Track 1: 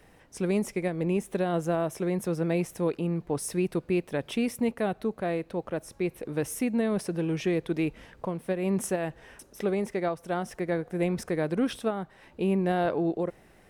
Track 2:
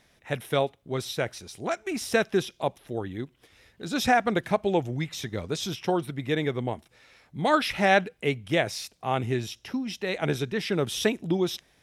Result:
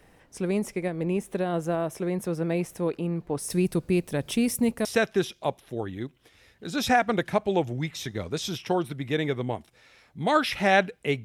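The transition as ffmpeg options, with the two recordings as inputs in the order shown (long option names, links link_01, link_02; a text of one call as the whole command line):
ffmpeg -i cue0.wav -i cue1.wav -filter_complex "[0:a]asettb=1/sr,asplit=3[link_01][link_02][link_03];[link_01]atrim=end=3.504[link_04];[link_02]atrim=start=3.5:end=4.85,asetpts=PTS-STARTPTS,afade=type=in:duration=0.004:curve=qsin,afade=type=out:start_time=1.346:duration=0.004:curve=qsin,bass=frequency=250:gain=7,treble=frequency=4000:gain=11[link_05];[link_03]atrim=start=4.846[link_06];[link_04][link_05]acrossfade=duration=0.004:curve1=hsin:curve2=qsin[link_07];[link_07][link_06]acrossfade=duration=0.004:curve1=qsin:curve2=hsin,apad=whole_dur=11.24,atrim=end=11.24,atrim=end=4.852[link_08];[1:a]atrim=start=2.028:end=8.42[link_09];[link_08][link_09]acrossfade=duration=0.004:curve1=hsin:curve2=hsin" out.wav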